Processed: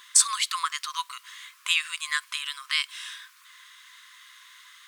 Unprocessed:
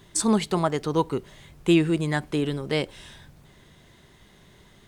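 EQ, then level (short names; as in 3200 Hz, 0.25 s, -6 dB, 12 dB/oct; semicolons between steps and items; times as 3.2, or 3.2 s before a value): dynamic EQ 1400 Hz, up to -7 dB, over -41 dBFS, Q 1.1; brick-wall FIR high-pass 990 Hz; +8.5 dB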